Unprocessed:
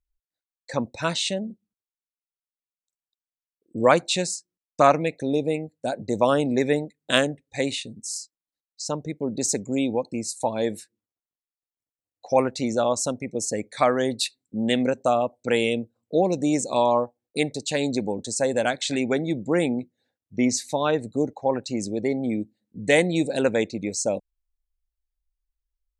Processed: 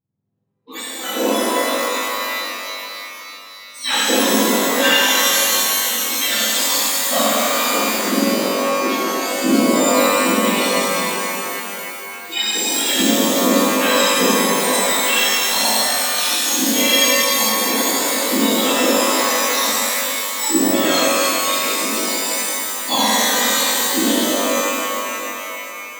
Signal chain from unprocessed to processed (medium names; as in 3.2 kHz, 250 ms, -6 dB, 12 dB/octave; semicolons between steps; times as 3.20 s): spectrum inverted on a logarithmic axis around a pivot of 1.4 kHz; pitch-shifted reverb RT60 3.3 s, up +12 st, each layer -2 dB, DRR -10 dB; trim -3 dB